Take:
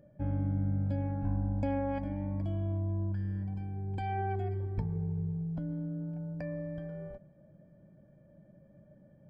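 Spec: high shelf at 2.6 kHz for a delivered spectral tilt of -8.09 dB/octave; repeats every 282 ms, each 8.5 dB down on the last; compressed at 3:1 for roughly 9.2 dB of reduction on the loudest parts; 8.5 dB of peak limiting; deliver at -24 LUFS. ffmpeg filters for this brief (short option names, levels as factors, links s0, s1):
-af "highshelf=f=2600:g=-4,acompressor=threshold=0.01:ratio=3,alimiter=level_in=5.31:limit=0.0631:level=0:latency=1,volume=0.188,aecho=1:1:282|564|846|1128:0.376|0.143|0.0543|0.0206,volume=15"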